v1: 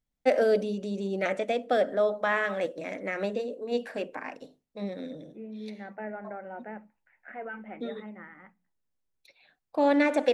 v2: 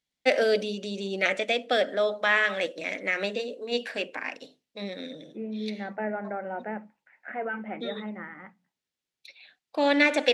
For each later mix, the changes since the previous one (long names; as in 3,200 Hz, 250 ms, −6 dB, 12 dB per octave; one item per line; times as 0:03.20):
first voice: add meter weighting curve D
second voice +6.5 dB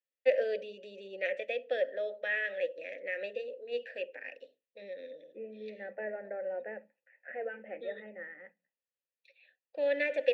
second voice +5.0 dB
master: add formant filter e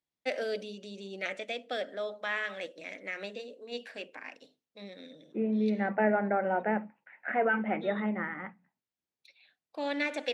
first voice −10.5 dB
master: remove formant filter e